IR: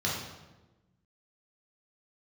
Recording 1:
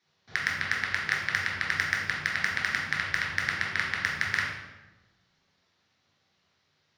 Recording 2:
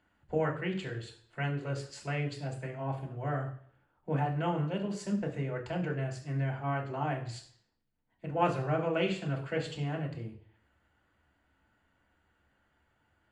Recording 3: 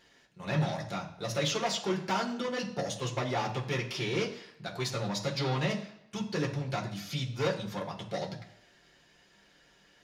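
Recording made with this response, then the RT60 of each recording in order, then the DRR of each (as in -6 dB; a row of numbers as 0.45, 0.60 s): 1; 1.1, 0.55, 0.75 s; -5.0, -1.5, -2.5 dB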